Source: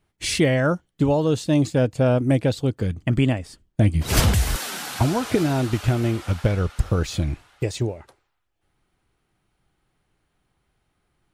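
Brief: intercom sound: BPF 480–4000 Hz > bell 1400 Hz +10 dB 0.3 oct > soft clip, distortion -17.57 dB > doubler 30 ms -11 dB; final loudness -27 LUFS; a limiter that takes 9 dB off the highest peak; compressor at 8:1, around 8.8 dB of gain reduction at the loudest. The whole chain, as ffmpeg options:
-filter_complex "[0:a]acompressor=threshold=-23dB:ratio=8,alimiter=limit=-22dB:level=0:latency=1,highpass=480,lowpass=4k,equalizer=f=1.4k:t=o:w=0.3:g=10,asoftclip=threshold=-26.5dB,asplit=2[a][b];[b]adelay=30,volume=-11dB[c];[a][c]amix=inputs=2:normalize=0,volume=10.5dB"

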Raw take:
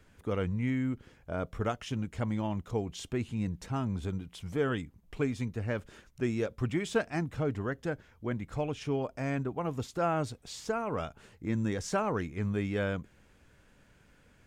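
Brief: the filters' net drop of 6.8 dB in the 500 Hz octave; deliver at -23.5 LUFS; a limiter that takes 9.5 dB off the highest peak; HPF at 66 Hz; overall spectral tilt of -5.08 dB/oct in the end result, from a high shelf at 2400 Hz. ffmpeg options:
-af "highpass=66,equalizer=f=500:t=o:g=-9,highshelf=f=2.4k:g=5.5,volume=14.5dB,alimiter=limit=-12.5dB:level=0:latency=1"

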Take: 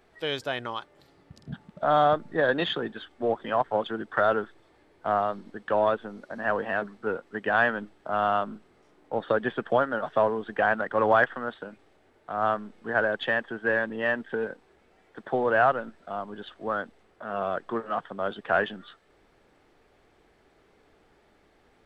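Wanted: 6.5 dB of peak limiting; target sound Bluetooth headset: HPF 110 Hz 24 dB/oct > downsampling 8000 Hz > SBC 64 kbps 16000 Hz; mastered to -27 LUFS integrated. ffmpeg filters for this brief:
-af "alimiter=limit=-15.5dB:level=0:latency=1,highpass=f=110:w=0.5412,highpass=f=110:w=1.3066,aresample=8000,aresample=44100,volume=2.5dB" -ar 16000 -c:a sbc -b:a 64k

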